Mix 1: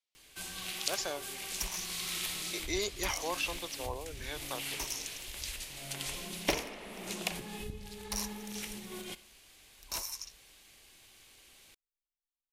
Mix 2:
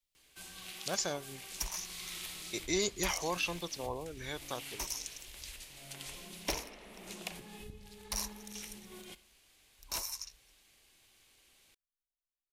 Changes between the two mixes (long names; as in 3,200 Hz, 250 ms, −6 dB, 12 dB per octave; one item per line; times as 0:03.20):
speech: remove band-pass filter 340–6,000 Hz
first sound −7.0 dB